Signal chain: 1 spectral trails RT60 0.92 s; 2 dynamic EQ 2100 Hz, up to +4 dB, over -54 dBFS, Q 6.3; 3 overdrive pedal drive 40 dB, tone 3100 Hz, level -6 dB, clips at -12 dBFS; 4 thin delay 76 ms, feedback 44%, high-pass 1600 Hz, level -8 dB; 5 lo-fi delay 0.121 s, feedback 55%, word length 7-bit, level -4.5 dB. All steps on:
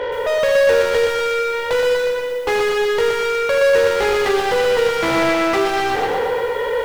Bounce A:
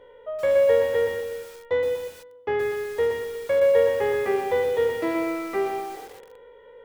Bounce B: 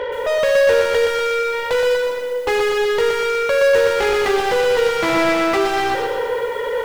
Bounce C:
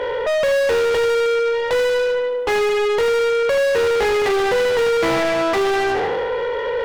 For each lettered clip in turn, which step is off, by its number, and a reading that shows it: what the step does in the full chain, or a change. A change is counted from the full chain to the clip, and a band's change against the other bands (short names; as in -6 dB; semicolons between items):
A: 3, 4 kHz band -9.0 dB; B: 1, 125 Hz band -2.0 dB; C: 5, 500 Hz band +1.5 dB